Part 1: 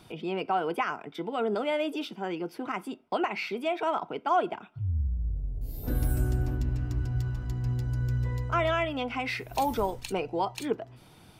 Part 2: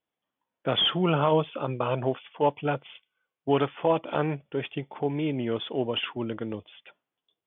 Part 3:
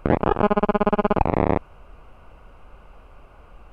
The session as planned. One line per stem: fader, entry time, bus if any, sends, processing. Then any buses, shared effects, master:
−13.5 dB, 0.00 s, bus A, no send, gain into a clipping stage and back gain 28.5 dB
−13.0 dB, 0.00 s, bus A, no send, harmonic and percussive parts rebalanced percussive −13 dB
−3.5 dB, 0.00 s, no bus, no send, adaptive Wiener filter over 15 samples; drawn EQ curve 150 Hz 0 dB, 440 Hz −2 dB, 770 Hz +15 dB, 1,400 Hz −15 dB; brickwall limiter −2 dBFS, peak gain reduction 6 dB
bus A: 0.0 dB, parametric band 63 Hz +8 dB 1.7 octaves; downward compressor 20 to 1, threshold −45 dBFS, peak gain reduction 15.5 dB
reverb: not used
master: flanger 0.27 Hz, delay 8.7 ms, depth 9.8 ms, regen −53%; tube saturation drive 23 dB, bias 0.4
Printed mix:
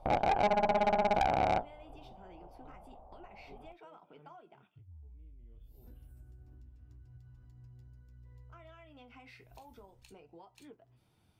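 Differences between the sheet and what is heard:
stem 1: missing gain into a clipping stage and back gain 28.5 dB
stem 2 −13.0 dB → −25.0 dB
stem 3: missing brickwall limiter −2 dBFS, peak gain reduction 6 dB

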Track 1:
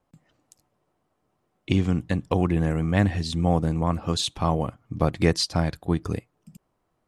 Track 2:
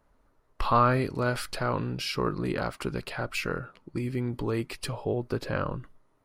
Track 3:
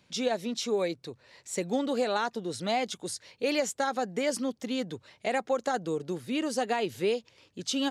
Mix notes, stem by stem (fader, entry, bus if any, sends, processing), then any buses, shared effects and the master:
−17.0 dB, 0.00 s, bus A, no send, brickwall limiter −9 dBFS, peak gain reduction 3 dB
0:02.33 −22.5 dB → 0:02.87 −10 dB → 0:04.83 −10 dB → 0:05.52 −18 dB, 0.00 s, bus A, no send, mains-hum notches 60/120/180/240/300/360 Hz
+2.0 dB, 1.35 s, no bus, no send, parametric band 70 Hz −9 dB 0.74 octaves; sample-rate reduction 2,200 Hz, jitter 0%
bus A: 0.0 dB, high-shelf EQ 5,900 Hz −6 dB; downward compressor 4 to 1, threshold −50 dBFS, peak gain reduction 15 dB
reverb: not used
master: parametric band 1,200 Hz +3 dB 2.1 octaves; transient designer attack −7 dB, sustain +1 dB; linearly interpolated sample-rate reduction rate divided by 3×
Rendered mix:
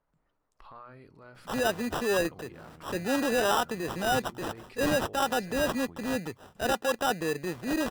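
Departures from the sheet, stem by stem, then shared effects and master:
stem 2 −22.5 dB → −12.0 dB
master: missing linearly interpolated sample-rate reduction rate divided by 3×

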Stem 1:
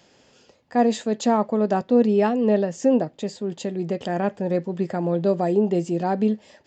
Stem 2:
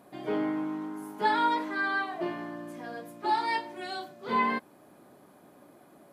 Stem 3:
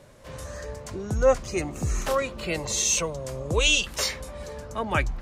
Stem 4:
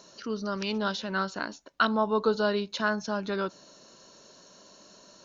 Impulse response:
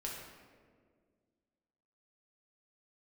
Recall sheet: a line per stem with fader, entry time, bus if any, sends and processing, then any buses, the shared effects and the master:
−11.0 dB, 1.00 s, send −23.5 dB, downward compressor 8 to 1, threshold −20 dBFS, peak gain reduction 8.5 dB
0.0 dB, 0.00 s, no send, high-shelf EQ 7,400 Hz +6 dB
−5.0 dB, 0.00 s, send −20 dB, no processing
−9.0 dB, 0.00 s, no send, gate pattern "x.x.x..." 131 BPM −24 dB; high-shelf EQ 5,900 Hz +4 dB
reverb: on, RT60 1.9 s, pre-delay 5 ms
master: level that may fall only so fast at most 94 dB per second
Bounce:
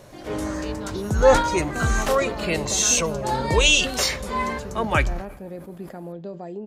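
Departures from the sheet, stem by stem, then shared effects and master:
stem 3 −5.0 dB → +3.5 dB
stem 4: missing gate pattern "x.x.x..." 131 BPM −24 dB

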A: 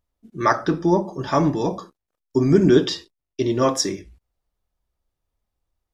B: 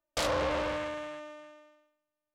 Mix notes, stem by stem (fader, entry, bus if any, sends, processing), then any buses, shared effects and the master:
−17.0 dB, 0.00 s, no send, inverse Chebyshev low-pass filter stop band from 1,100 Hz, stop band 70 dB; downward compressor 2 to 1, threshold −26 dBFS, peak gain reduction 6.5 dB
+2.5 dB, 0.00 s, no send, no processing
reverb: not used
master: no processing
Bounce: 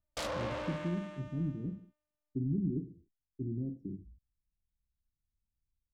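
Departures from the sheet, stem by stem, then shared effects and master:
stem A −17.0 dB → −7.5 dB
stem B +2.5 dB → −7.5 dB

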